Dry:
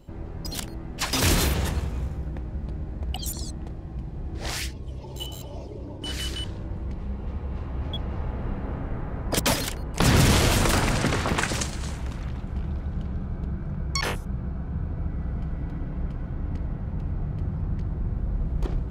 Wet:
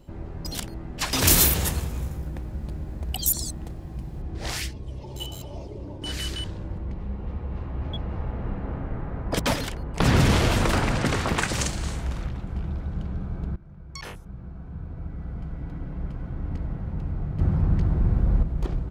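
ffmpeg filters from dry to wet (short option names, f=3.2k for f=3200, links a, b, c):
-filter_complex "[0:a]asettb=1/sr,asplit=3[a][b][c];[a]atrim=end=1.274[d];[b]atrim=start=1.27:end=4.22,asetpts=PTS-STARTPTS,afade=t=in:d=0.004:c=qsin,afade=t=out:st=2.946:d=0.004:c=qsin,aemphasis=mode=production:type=50fm[e];[c]atrim=start=4.216[f];[d][e]acrossfade=d=0.004:c1=hsin:c2=qsin[g];[g][f]acrossfade=d=0.004:c1=qsin:c2=hsin,asettb=1/sr,asplit=3[h][i][j];[h]atrim=end=6.784[k];[i]atrim=start=6.78:end=11.05,asetpts=PTS-STARTPTS,afade=t=in:d=0.004:c=qsin,afade=t=out:st=4.266:d=0.004:c=qsin,highshelf=f=5.3k:g=-10[l];[j]atrim=start=11.046[m];[k][l]acrossfade=d=0.004:c1=hsin:c2=qsin[n];[n][m]acrossfade=d=0.004:c1=qsin:c2=hsin,asplit=3[o][p][q];[o]afade=t=out:st=11.57:d=0.02[r];[p]asplit=2[s][t];[t]adelay=47,volume=-2.5dB[u];[s][u]amix=inputs=2:normalize=0,afade=t=in:st=11.57:d=0.02,afade=t=out:st=12.26:d=0.02[v];[q]afade=t=in:st=12.26:d=0.02[w];[r][v][w]amix=inputs=3:normalize=0,asettb=1/sr,asplit=3[x][y][z];[x]atrim=end=17.394[aa];[y]atrim=start=17.39:end=18.43,asetpts=PTS-STARTPTS,afade=t=in:d=0.004:c=qsin,afade=t=out:st=1.036:d=0.004:c=qsin,acontrast=82[ab];[z]atrim=start=18.426[ac];[aa][ab]acrossfade=d=0.004:c1=hsin:c2=qsin[ad];[ad][ac]acrossfade=d=0.004:c1=qsin:c2=hsin,asplit=2[ae][af];[ae]atrim=end=13.56,asetpts=PTS-STARTPTS,afade=t=out:st=13.556:d=0.004:c=hsin:silence=0.141254[ag];[af]atrim=start=13.56,asetpts=PTS-STARTPTS,afade=t=in:d=3.11:silence=0.141254[ah];[ag][ah]concat=n=2:v=0:a=1"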